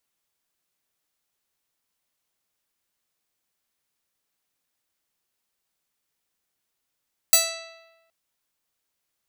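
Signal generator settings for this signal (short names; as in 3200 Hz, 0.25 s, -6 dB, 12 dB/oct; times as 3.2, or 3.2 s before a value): plucked string E5, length 0.77 s, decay 1.14 s, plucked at 0.38, bright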